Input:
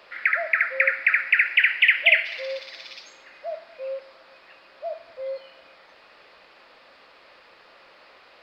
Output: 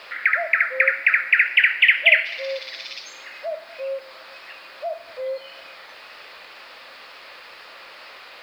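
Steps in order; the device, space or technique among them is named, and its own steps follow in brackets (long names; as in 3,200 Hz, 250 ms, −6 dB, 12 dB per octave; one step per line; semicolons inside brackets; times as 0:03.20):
noise-reduction cassette on a plain deck (one half of a high-frequency compander encoder only; tape wow and flutter 28 cents; white noise bed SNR 41 dB)
level +2.5 dB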